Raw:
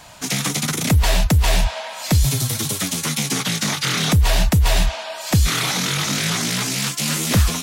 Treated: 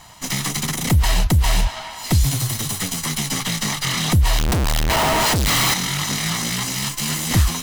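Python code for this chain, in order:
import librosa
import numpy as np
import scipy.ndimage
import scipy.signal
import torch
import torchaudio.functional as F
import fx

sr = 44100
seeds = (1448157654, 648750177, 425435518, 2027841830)

y = fx.lower_of_two(x, sr, delay_ms=1.0)
y = fx.schmitt(y, sr, flips_db=-33.5, at=(4.38, 5.74))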